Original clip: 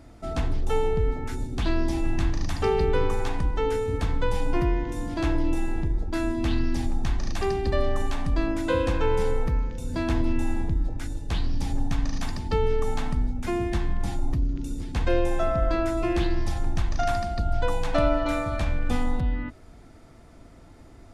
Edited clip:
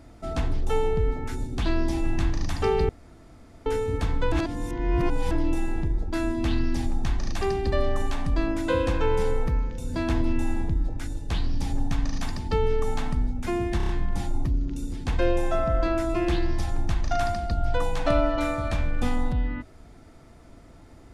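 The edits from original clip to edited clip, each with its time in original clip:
2.89–3.66 s: room tone
4.32–5.31 s: reverse
13.77 s: stutter 0.03 s, 5 plays

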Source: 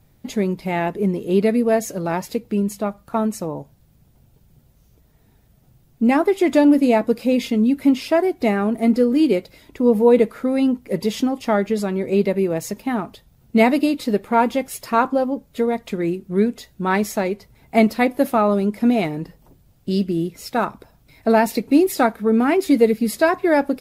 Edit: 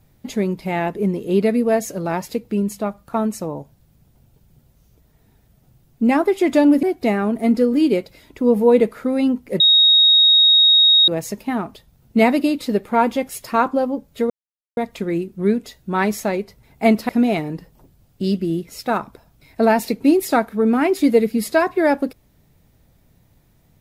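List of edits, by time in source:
6.83–8.22 s: delete
10.99–12.47 s: bleep 3.76 kHz -9 dBFS
15.69 s: insert silence 0.47 s
18.01–18.76 s: delete

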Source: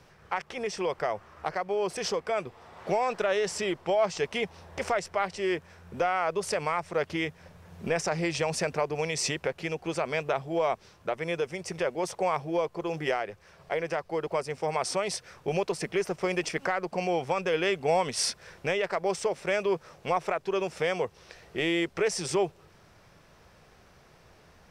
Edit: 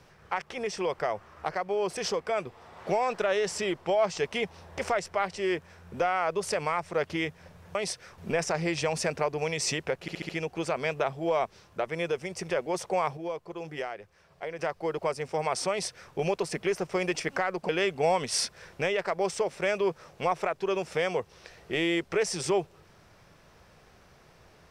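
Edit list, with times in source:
9.58 s: stutter 0.07 s, 5 plays
12.46–13.88 s: gain -6.5 dB
14.99–15.42 s: copy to 7.75 s
16.98–17.54 s: delete

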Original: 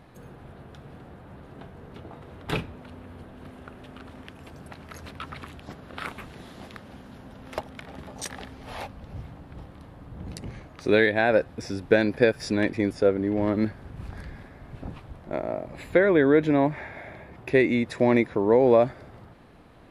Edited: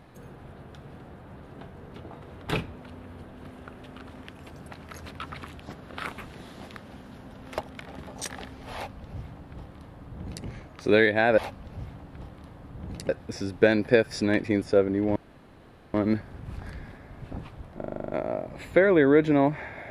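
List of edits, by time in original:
8.75–10.46 s: copy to 11.38 s
13.45 s: insert room tone 0.78 s
15.28 s: stutter 0.04 s, 9 plays

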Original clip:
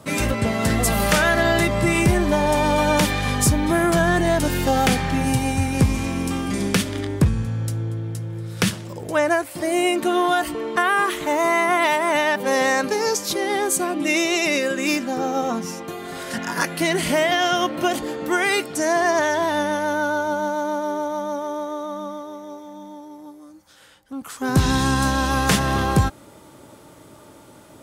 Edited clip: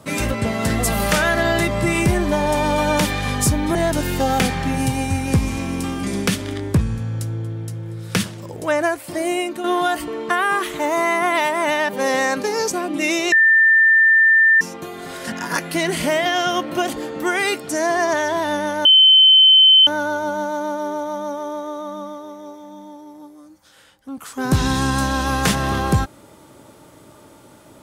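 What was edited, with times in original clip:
3.75–4.22 s: delete
9.68–10.11 s: fade out, to -8.5 dB
13.18–13.77 s: delete
14.38–15.67 s: bleep 1.79 kHz -9.5 dBFS
19.91 s: add tone 3.07 kHz -7 dBFS 1.02 s

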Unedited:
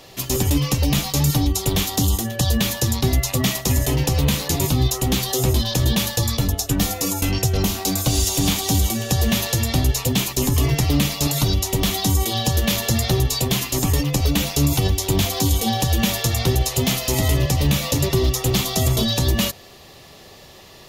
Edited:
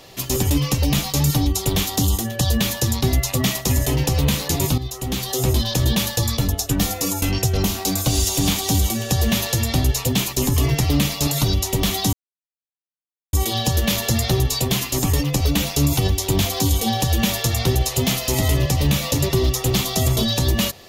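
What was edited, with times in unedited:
4.78–5.51 s: fade in, from -12.5 dB
12.13 s: insert silence 1.20 s

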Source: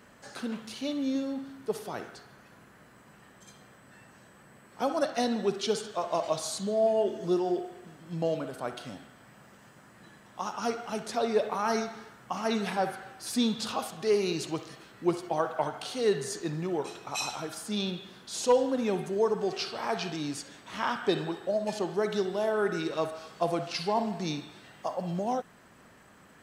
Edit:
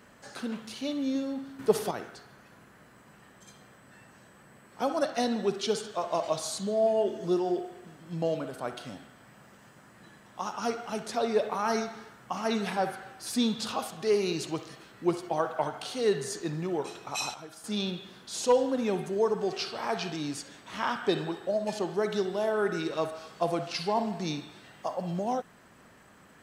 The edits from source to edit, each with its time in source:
1.59–1.91 s: gain +8 dB
17.34–17.64 s: gain -8.5 dB

